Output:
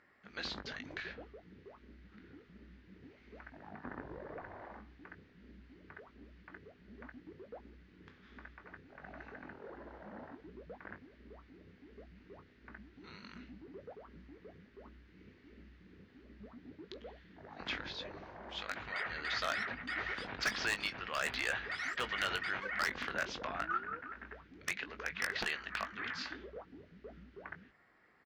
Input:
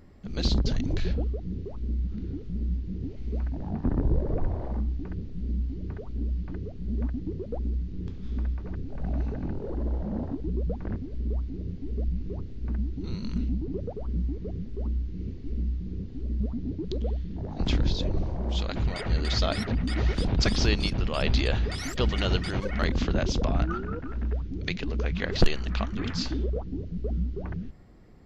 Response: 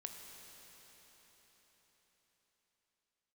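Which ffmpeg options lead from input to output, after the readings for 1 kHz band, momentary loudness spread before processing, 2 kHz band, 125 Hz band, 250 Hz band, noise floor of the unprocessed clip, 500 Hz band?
−3.5 dB, 9 LU, +0.5 dB, −28.0 dB, −20.0 dB, −38 dBFS, −13.5 dB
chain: -filter_complex "[0:a]bandpass=frequency=1700:width_type=q:width=2.2:csg=0,aeval=exprs='0.0398*(abs(mod(val(0)/0.0398+3,4)-2)-1)':channel_layout=same,asplit=2[link_01][link_02];[link_02]adelay=20,volume=-9.5dB[link_03];[link_01][link_03]amix=inputs=2:normalize=0,volume=3.5dB"

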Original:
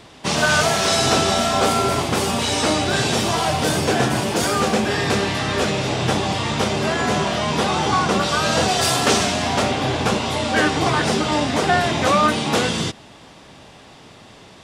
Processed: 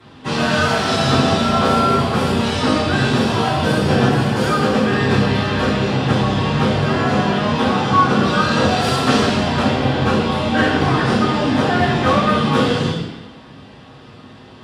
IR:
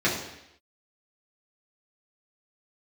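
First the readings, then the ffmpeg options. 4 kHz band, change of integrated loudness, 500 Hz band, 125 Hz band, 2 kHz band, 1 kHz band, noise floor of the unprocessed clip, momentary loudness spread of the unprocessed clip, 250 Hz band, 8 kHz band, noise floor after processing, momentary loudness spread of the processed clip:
−1.0 dB, +2.5 dB, +2.0 dB, +6.0 dB, +1.0 dB, +2.0 dB, −45 dBFS, 4 LU, +6.0 dB, −9.0 dB, −41 dBFS, 3 LU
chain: -filter_complex "[1:a]atrim=start_sample=2205,asetrate=31752,aresample=44100[link_01];[0:a][link_01]afir=irnorm=-1:irlink=0,volume=-15dB"

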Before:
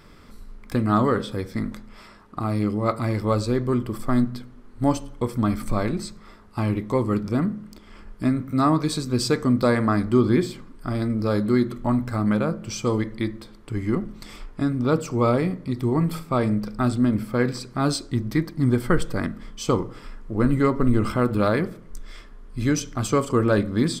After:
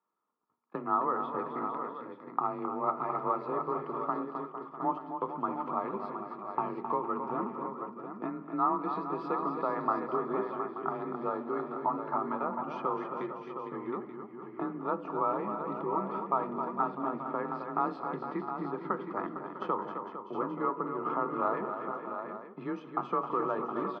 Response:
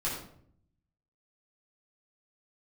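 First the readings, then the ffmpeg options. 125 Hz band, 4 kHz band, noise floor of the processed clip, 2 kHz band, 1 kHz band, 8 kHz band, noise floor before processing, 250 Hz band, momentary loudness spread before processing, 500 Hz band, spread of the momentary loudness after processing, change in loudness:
−24.0 dB, below −25 dB, −48 dBFS, −13.5 dB, −1.0 dB, below −40 dB, −46 dBFS, −15.0 dB, 10 LU, −9.5 dB, 8 LU, −10.5 dB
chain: -af "bandreject=frequency=1500:width=5.4,agate=range=-32dB:threshold=-34dB:ratio=16:detection=peak,equalizer=frequency=880:width_type=o:width=1.5:gain=6,acompressor=threshold=-26dB:ratio=3,afreqshift=28,highpass=frequency=220:width=0.5412,highpass=frequency=220:width=1.3066,equalizer=frequency=260:width_type=q:width=4:gain=-9,equalizer=frequency=550:width_type=q:width=4:gain=-5,equalizer=frequency=930:width_type=q:width=4:gain=8,equalizer=frequency=1300:width_type=q:width=4:gain=6,equalizer=frequency=2100:width_type=q:width=4:gain=-9,lowpass=frequency=2300:width=0.5412,lowpass=frequency=2300:width=1.3066,aecho=1:1:202|264|456|650|715|881:0.106|0.398|0.282|0.188|0.398|0.224,volume=-4.5dB"

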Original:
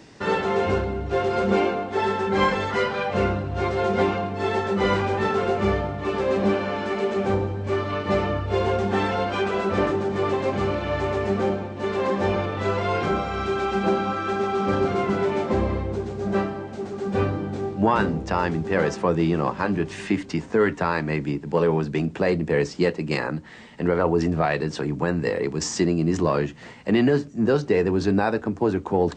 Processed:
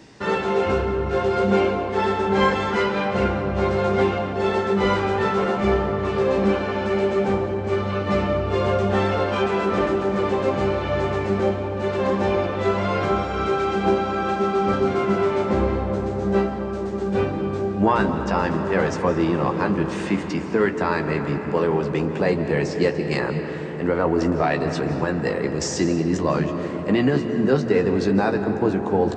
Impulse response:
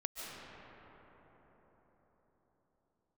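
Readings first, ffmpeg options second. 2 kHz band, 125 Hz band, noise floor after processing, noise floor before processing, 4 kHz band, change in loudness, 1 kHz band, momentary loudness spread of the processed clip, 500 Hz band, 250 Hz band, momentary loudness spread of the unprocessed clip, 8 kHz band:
+1.0 dB, +1.5 dB, −28 dBFS, −40 dBFS, +1.0 dB, +2.0 dB, +1.5 dB, 4 LU, +2.0 dB, +2.0 dB, 5 LU, can't be measured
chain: -filter_complex "[0:a]asplit=2[link_01][link_02];[1:a]atrim=start_sample=2205,adelay=15[link_03];[link_02][link_03]afir=irnorm=-1:irlink=0,volume=-5.5dB[link_04];[link_01][link_04]amix=inputs=2:normalize=0"

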